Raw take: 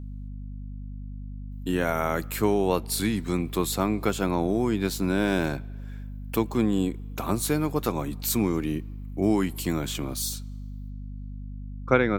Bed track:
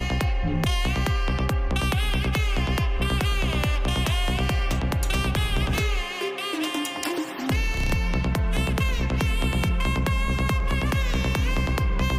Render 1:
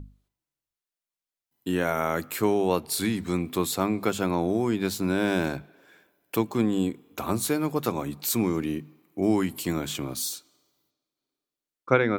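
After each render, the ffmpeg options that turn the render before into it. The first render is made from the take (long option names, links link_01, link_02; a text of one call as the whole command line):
ffmpeg -i in.wav -af "bandreject=frequency=50:width_type=h:width=6,bandreject=frequency=100:width_type=h:width=6,bandreject=frequency=150:width_type=h:width=6,bandreject=frequency=200:width_type=h:width=6,bandreject=frequency=250:width_type=h:width=6" out.wav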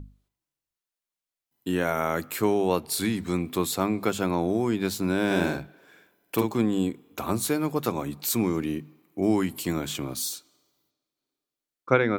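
ffmpeg -i in.wav -filter_complex "[0:a]asettb=1/sr,asplit=3[link_01][link_02][link_03];[link_01]atrim=end=5.264[link_04];[link_02]atrim=start=5.26:end=6.56,asetpts=PTS-STARTPTS,afade=type=in:duration=0.004:curve=qsin,afade=type=out:start_time=1.296:duration=0.004:curve=qsin,asplit=2[link_05][link_06];[link_06]adelay=46,volume=-4dB[link_07];[link_05][link_07]amix=inputs=2:normalize=0,atrim=end_sample=57330[link_08];[link_03]atrim=start=6.556[link_09];[link_04][link_08]acrossfade=duration=0.004:curve1=hsin:curve2=qsin[link_10];[link_10][link_09]acrossfade=duration=0.004:curve1=qsin:curve2=hsin" out.wav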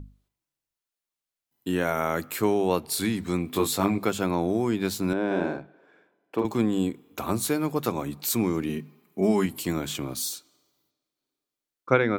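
ffmpeg -i in.wav -filter_complex "[0:a]asettb=1/sr,asplit=3[link_01][link_02][link_03];[link_01]atrim=end=3.514[link_04];[link_02]atrim=start=3.51:end=3.98,asetpts=PTS-STARTPTS,afade=type=in:duration=0.004:curve=qsin,afade=type=out:start_time=0.466:duration=0.004:curve=qsin,asplit=2[link_05][link_06];[link_06]adelay=20,volume=-3dB[link_07];[link_05][link_07]amix=inputs=2:normalize=0,atrim=end_sample=20727[link_08];[link_03]atrim=start=3.976[link_09];[link_04][link_08]acrossfade=duration=0.004:curve1=hsin:curve2=qsin[link_10];[link_10][link_09]acrossfade=duration=0.004:curve1=qsin:curve2=hsin,asettb=1/sr,asplit=3[link_11][link_12][link_13];[link_11]atrim=end=5.134[link_14];[link_12]atrim=start=5.13:end=6.45,asetpts=PTS-STARTPTS,afade=type=in:duration=0.004:curve=qsin,afade=type=out:start_time=1.316:duration=0.004:curve=qsin,bandpass=frequency=540:width_type=q:width=0.56[link_15];[link_13]atrim=start=6.446[link_16];[link_14][link_15]acrossfade=duration=0.004:curve1=hsin:curve2=qsin[link_17];[link_17][link_16]acrossfade=duration=0.004:curve1=qsin:curve2=hsin,asettb=1/sr,asplit=3[link_18][link_19][link_20];[link_18]atrim=end=8.694[link_21];[link_19]atrim=start=8.69:end=9.46,asetpts=PTS-STARTPTS,afade=type=in:duration=0.004:curve=qsin,afade=type=out:start_time=0.766:duration=0.004:curve=qsin,aecho=1:1:4.8:0.72,atrim=end_sample=33957[link_22];[link_20]atrim=start=9.456[link_23];[link_21][link_22]acrossfade=duration=0.004:curve1=hsin:curve2=qsin[link_24];[link_24][link_23]acrossfade=duration=0.004:curve1=qsin:curve2=hsin" out.wav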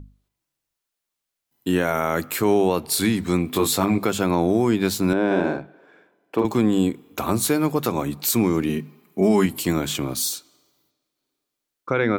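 ffmpeg -i in.wav -af "alimiter=limit=-15dB:level=0:latency=1:release=53,dynaudnorm=framelen=210:gausssize=3:maxgain=6dB" out.wav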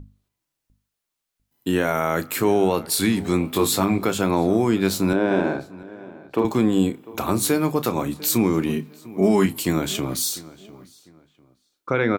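ffmpeg -i in.wav -filter_complex "[0:a]asplit=2[link_01][link_02];[link_02]adelay=31,volume=-13.5dB[link_03];[link_01][link_03]amix=inputs=2:normalize=0,asplit=2[link_04][link_05];[link_05]adelay=699,lowpass=frequency=2800:poles=1,volume=-19.5dB,asplit=2[link_06][link_07];[link_07]adelay=699,lowpass=frequency=2800:poles=1,volume=0.3[link_08];[link_04][link_06][link_08]amix=inputs=3:normalize=0" out.wav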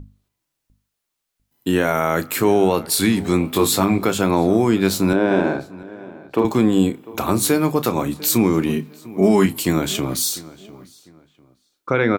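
ffmpeg -i in.wav -af "volume=3dB" out.wav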